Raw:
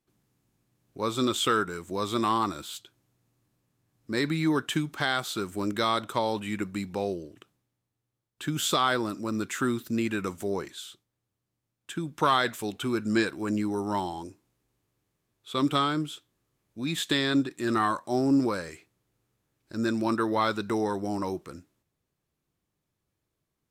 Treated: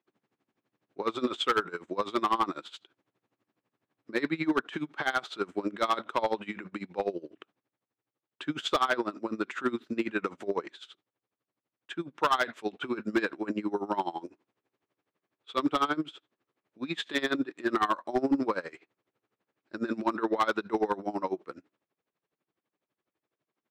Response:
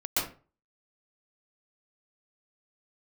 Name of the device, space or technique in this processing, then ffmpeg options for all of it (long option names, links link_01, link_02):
helicopter radio: -af "highpass=310,lowpass=2800,aeval=exprs='val(0)*pow(10,-20*(0.5-0.5*cos(2*PI*12*n/s))/20)':channel_layout=same,asoftclip=type=hard:threshold=-24.5dB,volume=6dB"